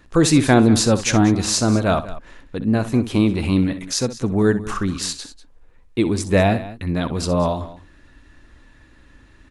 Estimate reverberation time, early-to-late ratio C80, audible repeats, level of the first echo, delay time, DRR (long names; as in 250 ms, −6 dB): no reverb audible, no reverb audible, 2, −13.5 dB, 63 ms, no reverb audible